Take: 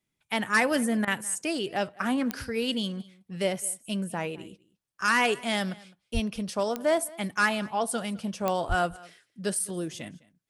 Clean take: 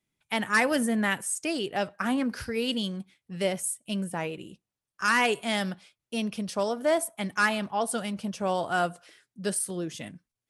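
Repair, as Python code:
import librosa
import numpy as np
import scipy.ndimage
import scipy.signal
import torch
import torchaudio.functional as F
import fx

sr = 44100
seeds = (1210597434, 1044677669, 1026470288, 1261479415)

y = fx.fix_declick_ar(x, sr, threshold=10.0)
y = fx.highpass(y, sr, hz=140.0, slope=24, at=(6.13, 6.25), fade=0.02)
y = fx.highpass(y, sr, hz=140.0, slope=24, at=(8.68, 8.8), fade=0.02)
y = fx.fix_interpolate(y, sr, at_s=(1.05,), length_ms=23.0)
y = fx.fix_echo_inverse(y, sr, delay_ms=208, level_db=-22.5)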